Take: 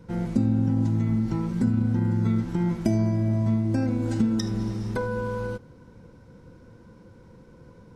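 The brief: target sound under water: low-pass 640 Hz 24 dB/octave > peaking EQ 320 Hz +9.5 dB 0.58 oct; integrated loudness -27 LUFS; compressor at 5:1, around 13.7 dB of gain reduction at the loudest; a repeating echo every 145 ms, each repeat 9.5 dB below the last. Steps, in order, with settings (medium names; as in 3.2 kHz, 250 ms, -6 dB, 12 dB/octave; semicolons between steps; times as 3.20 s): compression 5:1, threshold -35 dBFS; low-pass 640 Hz 24 dB/octave; peaking EQ 320 Hz +9.5 dB 0.58 oct; feedback delay 145 ms, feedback 33%, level -9.5 dB; trim +7 dB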